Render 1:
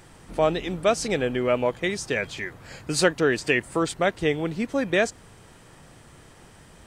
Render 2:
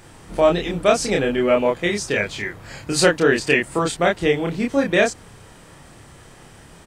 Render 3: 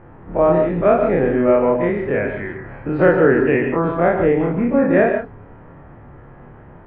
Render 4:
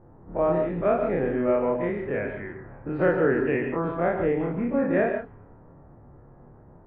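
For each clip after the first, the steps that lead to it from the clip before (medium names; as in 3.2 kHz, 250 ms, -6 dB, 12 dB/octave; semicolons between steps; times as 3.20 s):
doubling 29 ms -2 dB; trim +3 dB
every event in the spectrogram widened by 60 ms; Bessel low-pass 1.2 kHz, order 6; gated-style reverb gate 170 ms rising, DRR 5.5 dB
level-controlled noise filter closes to 810 Hz, open at -13 dBFS; trim -8.5 dB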